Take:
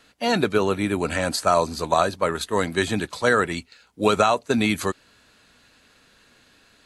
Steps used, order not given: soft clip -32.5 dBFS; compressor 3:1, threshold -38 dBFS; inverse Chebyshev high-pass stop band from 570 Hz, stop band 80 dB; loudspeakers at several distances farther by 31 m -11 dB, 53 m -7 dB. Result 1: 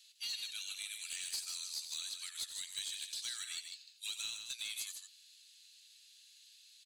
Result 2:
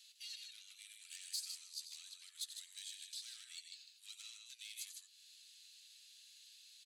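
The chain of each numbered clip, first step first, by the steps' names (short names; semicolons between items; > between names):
inverse Chebyshev high-pass > compressor > soft clip > loudspeakers at several distances; compressor > loudspeakers at several distances > soft clip > inverse Chebyshev high-pass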